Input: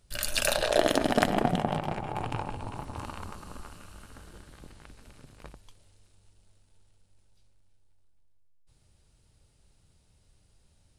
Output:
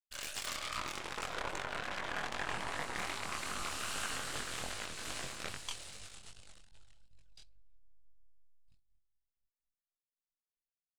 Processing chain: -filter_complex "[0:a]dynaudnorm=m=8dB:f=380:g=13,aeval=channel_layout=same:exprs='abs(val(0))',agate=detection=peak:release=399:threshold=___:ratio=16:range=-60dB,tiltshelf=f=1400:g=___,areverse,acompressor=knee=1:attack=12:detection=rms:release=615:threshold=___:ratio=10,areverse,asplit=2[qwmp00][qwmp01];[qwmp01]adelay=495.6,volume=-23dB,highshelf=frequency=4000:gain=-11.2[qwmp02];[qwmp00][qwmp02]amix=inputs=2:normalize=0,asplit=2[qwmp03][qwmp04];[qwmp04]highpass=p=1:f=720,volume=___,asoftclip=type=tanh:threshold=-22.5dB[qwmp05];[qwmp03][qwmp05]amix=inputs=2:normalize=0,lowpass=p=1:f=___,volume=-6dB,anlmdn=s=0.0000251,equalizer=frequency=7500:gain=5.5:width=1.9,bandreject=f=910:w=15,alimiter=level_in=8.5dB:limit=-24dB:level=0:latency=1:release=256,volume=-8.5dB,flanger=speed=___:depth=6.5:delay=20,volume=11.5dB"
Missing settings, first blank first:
-54dB, -7.5, -37dB, 10dB, 1600, 2.5